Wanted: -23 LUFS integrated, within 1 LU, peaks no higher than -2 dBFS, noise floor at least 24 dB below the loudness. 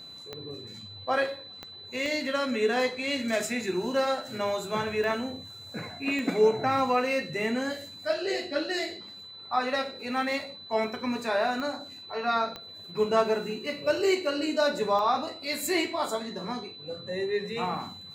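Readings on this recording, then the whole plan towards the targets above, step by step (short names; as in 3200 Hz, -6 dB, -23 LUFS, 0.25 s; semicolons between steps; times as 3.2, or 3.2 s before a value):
clicks 8; steady tone 4000 Hz; tone level -43 dBFS; loudness -29.0 LUFS; peak -11.0 dBFS; loudness target -23.0 LUFS
-> de-click; notch 4000 Hz, Q 30; gain +6 dB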